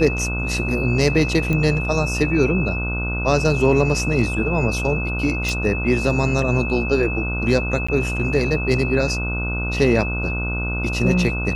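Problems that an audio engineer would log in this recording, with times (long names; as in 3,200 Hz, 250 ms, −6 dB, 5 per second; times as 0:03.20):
mains buzz 60 Hz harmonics 25 −25 dBFS
whistle 2,600 Hz −26 dBFS
0:01.53: click −11 dBFS
0:05.49: click
0:07.87–0:07.88: drop-out 15 ms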